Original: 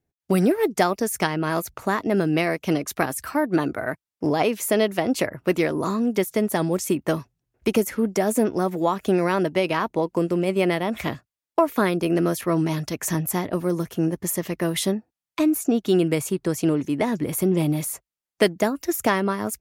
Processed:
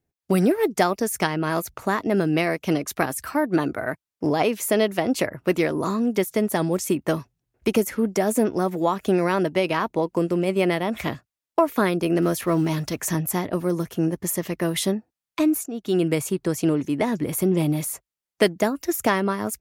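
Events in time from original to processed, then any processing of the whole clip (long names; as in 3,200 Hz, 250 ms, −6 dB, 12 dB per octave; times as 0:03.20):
0:12.22–0:13.01: mu-law and A-law mismatch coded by mu
0:15.66–0:16.07: fade in, from −16.5 dB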